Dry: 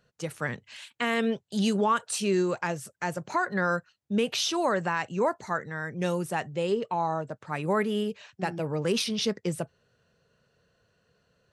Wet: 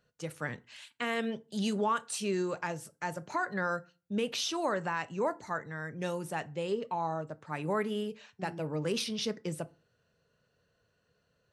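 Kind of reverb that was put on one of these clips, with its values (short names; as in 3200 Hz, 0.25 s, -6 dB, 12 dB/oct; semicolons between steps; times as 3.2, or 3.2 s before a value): FDN reverb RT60 0.34 s, low-frequency decay 1.2×, high-frequency decay 0.7×, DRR 13.5 dB; gain -5.5 dB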